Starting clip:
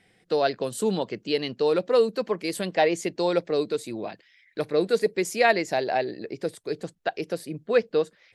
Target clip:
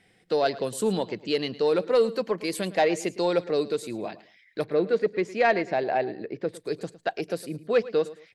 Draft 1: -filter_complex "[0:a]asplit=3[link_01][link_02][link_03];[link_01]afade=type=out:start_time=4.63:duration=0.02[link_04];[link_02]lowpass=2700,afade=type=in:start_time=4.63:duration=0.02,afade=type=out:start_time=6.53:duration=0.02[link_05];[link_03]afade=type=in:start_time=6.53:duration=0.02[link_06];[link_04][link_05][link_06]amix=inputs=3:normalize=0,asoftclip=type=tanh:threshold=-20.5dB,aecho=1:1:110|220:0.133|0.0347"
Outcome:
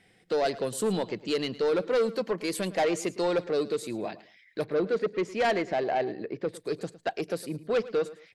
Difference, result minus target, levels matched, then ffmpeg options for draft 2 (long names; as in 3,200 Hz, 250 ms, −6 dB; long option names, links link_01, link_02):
soft clipping: distortion +12 dB
-filter_complex "[0:a]asplit=3[link_01][link_02][link_03];[link_01]afade=type=out:start_time=4.63:duration=0.02[link_04];[link_02]lowpass=2700,afade=type=in:start_time=4.63:duration=0.02,afade=type=out:start_time=6.53:duration=0.02[link_05];[link_03]afade=type=in:start_time=6.53:duration=0.02[link_06];[link_04][link_05][link_06]amix=inputs=3:normalize=0,asoftclip=type=tanh:threshold=-11dB,aecho=1:1:110|220:0.133|0.0347"